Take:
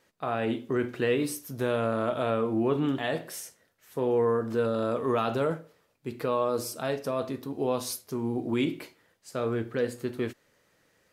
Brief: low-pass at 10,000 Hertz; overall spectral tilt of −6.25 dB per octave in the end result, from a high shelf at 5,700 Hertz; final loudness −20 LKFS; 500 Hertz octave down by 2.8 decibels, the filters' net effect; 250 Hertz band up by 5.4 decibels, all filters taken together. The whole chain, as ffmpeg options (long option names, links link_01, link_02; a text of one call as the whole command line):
ffmpeg -i in.wav -af "lowpass=10000,equalizer=frequency=250:width_type=o:gain=8,equalizer=frequency=500:width_type=o:gain=-6,highshelf=frequency=5700:gain=-3,volume=8dB" out.wav